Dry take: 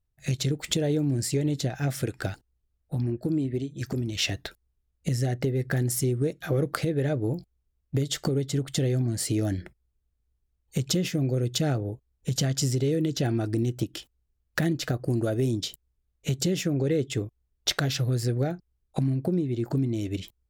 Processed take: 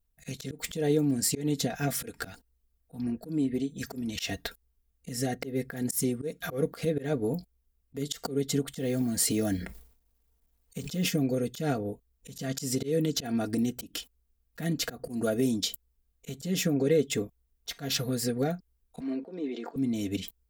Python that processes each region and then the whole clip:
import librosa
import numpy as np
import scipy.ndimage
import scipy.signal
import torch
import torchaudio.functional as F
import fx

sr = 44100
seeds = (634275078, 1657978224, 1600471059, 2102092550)

y = fx.chain(x, sr, fx.quant_companded(bits=8),
    fx.sustainer(db_per_s=100.0), at=(8.78, 11.09))
y = fx.chain(y, sr, fx.highpass(hz=330.0, slope=24),
    fx.air_absorb(metres=160.0),
    fx.env_flatten(amount_pct=50), at=(19.0, 19.76))
y = fx.high_shelf(y, sr, hz=11000.0, db=11.5)
y = y + 0.75 * np.pad(y, (int(4.3 * sr / 1000.0), 0))[:len(y)]
y = fx.auto_swell(y, sr, attack_ms=144.0)
y = F.gain(torch.from_numpy(y), -1.0).numpy()